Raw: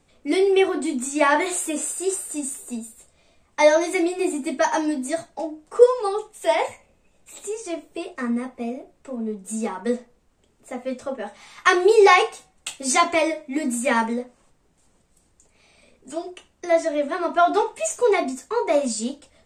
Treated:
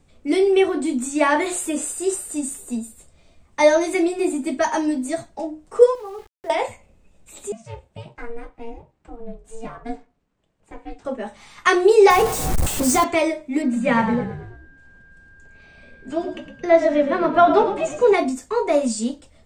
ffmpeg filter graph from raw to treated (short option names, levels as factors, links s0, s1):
-filter_complex "[0:a]asettb=1/sr,asplit=3[s0][s1][s2];[s0]atrim=end=5.954[s3];[s1]atrim=start=5.95:end=6.5,asetpts=PTS-STARTPTS,afade=t=in:d=0.004:c=qsin,afade=t=out:st=0.546:d=0.004:c=qsin,lowpass=f=1800:w=0.5412,lowpass=f=1800:w=1.3066,acompressor=threshold=0.0112:ratio=2:attack=3.2:release=140:knee=1:detection=peak,aeval=exprs='val(0)*gte(abs(val(0)),0.00668)':c=same[s4];[s2]atrim=start=6.496[s5];[s3][s4]acrossfade=d=0.004:c1=hsin:c2=qsin[s6];[s6][s5]acrossfade=d=0.004:c1=qsin:c2=hsin,asettb=1/sr,asplit=3[s7][s8][s9];[s7]atrim=end=7.524[s10];[s8]atrim=start=7.52:end=11.05,asetpts=PTS-STARTPTS,afade=t=in:d=0.004:c=qsin,afade=t=out:st=3.526:d=0.004:c=qsin,highpass=f=1400:p=1,aemphasis=mode=reproduction:type=riaa,aeval=exprs='val(0)*sin(2*PI*230*n/s)':c=same[s11];[s9]atrim=start=11.046[s12];[s10][s11]acrossfade=d=0.004:c1=hsin:c2=qsin[s13];[s13][s12]acrossfade=d=0.004:c1=qsin:c2=hsin,asettb=1/sr,asplit=3[s14][s15][s16];[s14]atrim=end=12.104[s17];[s15]atrim=start=12.1:end=13.04,asetpts=PTS-STARTPTS,afade=t=in:d=0.004:c=qsin,afade=t=out:st=0.936:d=0.004:c=qsin,aeval=exprs='val(0)+0.5*0.133*sgn(val(0))':c=same,equalizer=f=2900:w=0.61:g=-9[s18];[s16]atrim=start=13.036[s19];[s17][s18]acrossfade=d=0.004:c1=hsin:c2=qsin[s20];[s20][s19]acrossfade=d=0.004:c1=qsin:c2=hsin,asettb=1/sr,asplit=3[s21][s22][s23];[s21]atrim=end=13.624[s24];[s22]atrim=start=13.62:end=18.14,asetpts=PTS-STARTPTS,afade=t=in:d=0.004:c=qsin,afade=t=out:st=4.516:d=0.004:c=qsin,lowpass=3700,asplit=6[s25][s26][s27][s28][s29][s30];[s26]adelay=110,afreqshift=-43,volume=0.316[s31];[s27]adelay=220,afreqshift=-86,volume=0.148[s32];[s28]adelay=330,afreqshift=-129,volume=0.07[s33];[s29]adelay=440,afreqshift=-172,volume=0.0327[s34];[s30]adelay=550,afreqshift=-215,volume=0.0155[s35];[s25][s31][s32][s33][s34][s35]amix=inputs=6:normalize=0,atrim=end_sample=199332,aeval=exprs='val(0)+0.00282*sin(2*PI*1600*n/s)':c=same[s36];[s23]atrim=start=18.136[s37];[s24][s36]acrossfade=d=0.004:c1=hsin:c2=qsin[s38];[s38][s37]acrossfade=d=0.004:c1=qsin:c2=hsin,lowshelf=f=220:g=10,dynaudnorm=f=730:g=7:m=3.76,volume=0.891"